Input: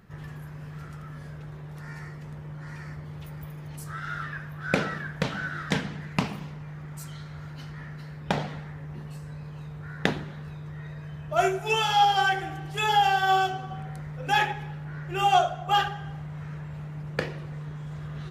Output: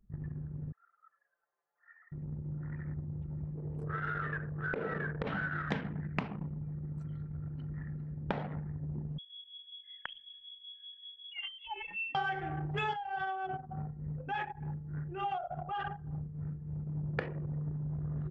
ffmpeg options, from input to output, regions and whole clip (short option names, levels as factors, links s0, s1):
-filter_complex "[0:a]asettb=1/sr,asplit=3[s0][s1][s2];[s0]atrim=end=0.724[s3];[s1]atrim=start=0.72:end=2.12,asetpts=PTS-STARTPTS,afade=t=in:d=0.004:c=qsin,afade=t=out:st=1.396:d=0.004:c=qsin,highpass=f=740:w=0.5412,highpass=f=740:w=1.3066,bandreject=f=940:w=9.4[s4];[s2]atrim=start=2.116[s5];[s3][s4]acrossfade=d=0.004:c1=hsin:c2=qsin[s6];[s6][s5]acrossfade=d=0.004:c1=qsin:c2=hsin,asettb=1/sr,asplit=3[s7][s8][s9];[s7]atrim=end=3.554[s10];[s8]atrim=start=3.55:end=5.27,asetpts=PTS-STARTPTS,afade=t=in:d=0.004:c=qsin,afade=t=out:st=1.716:d=0.004:c=qsin,equalizer=f=440:w=2.6:g=11.5,acompressor=threshold=0.0355:ratio=6:attack=3.2:release=140:knee=1:detection=peak,bandreject=f=47.58:t=h:w=4,bandreject=f=95.16:t=h:w=4,bandreject=f=142.74:t=h:w=4,bandreject=f=190.32:t=h:w=4,bandreject=f=237.9:t=h:w=4,bandreject=f=285.48:t=h:w=4,bandreject=f=333.06:t=h:w=4,bandreject=f=380.64:t=h:w=4,bandreject=f=428.22:t=h:w=4,bandreject=f=475.8:t=h:w=4,bandreject=f=523.38:t=h:w=4,bandreject=f=570.96:t=h:w=4,bandreject=f=618.54:t=h:w=4,bandreject=f=666.12:t=h:w=4,bandreject=f=713.7:t=h:w=4,bandreject=f=761.28:t=h:w=4,bandreject=f=808.86:t=h:w=4[s11];[s9]atrim=start=5.266[s12];[s10][s11]acrossfade=d=0.004:c1=hsin:c2=qsin[s13];[s13][s12]acrossfade=d=0.004:c1=qsin:c2=hsin,asettb=1/sr,asplit=3[s14][s15][s16];[s14]atrim=end=9.184[s17];[s15]atrim=start=9.18:end=12.15,asetpts=PTS-STARTPTS,afade=t=in:d=0.004:c=qsin,afade=t=out:st=2.966:d=0.004:c=qsin,acompressor=threshold=0.0141:ratio=2.5:attack=3.2:release=140:knee=1:detection=peak,acrossover=split=1400[s18][s19];[s18]aeval=exprs='val(0)*(1-0.5/2+0.5/2*cos(2*PI*5.3*n/s))':c=same[s20];[s19]aeval=exprs='val(0)*(1-0.5/2-0.5/2*cos(2*PI*5.3*n/s))':c=same[s21];[s20][s21]amix=inputs=2:normalize=0,lowpass=f=3000:t=q:w=0.5098,lowpass=f=3000:t=q:w=0.6013,lowpass=f=3000:t=q:w=0.9,lowpass=f=3000:t=q:w=2.563,afreqshift=-3500[s22];[s16]atrim=start=12.146[s23];[s17][s22]acrossfade=d=0.004:c1=hsin:c2=qsin[s24];[s24][s23]acrossfade=d=0.004:c1=qsin:c2=hsin,asettb=1/sr,asplit=3[s25][s26][s27];[s25]atrim=end=12.934[s28];[s26]atrim=start=12.93:end=16.87,asetpts=PTS-STARTPTS,afade=t=in:d=0.004:c=qsin,afade=t=out:st=3.936:d=0.004:c=qsin,acompressor=threshold=0.02:ratio=2.5:attack=3.2:release=140:knee=1:detection=peak,tremolo=f=3.4:d=0.43[s29];[s27]atrim=start=16.866[s30];[s28][s29]acrossfade=d=0.004:c1=hsin:c2=qsin[s31];[s31][s30]acrossfade=d=0.004:c1=qsin:c2=hsin,anlmdn=2.51,lowpass=2400,acompressor=threshold=0.0224:ratio=6,volume=1.19"